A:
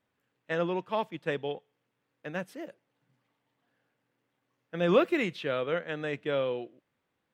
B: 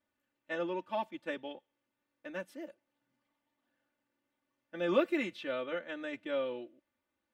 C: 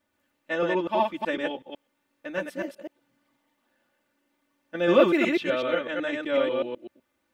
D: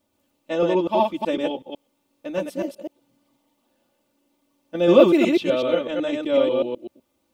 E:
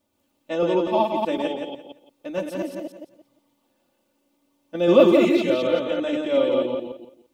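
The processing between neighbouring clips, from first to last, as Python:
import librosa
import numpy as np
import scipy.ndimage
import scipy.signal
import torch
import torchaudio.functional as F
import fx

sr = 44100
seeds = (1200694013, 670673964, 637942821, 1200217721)

y1 = x + 0.97 * np.pad(x, (int(3.4 * sr / 1000.0), 0))[:len(x)]
y1 = y1 * librosa.db_to_amplitude(-8.5)
y2 = fx.reverse_delay(y1, sr, ms=125, wet_db=-1.5)
y2 = y2 * librosa.db_to_amplitude(8.5)
y3 = fx.peak_eq(y2, sr, hz=1700.0, db=-15.0, octaves=0.88)
y3 = y3 * librosa.db_to_amplitude(6.5)
y4 = fx.echo_feedback(y3, sr, ms=172, feedback_pct=23, wet_db=-5.5)
y4 = y4 * librosa.db_to_amplitude(-1.5)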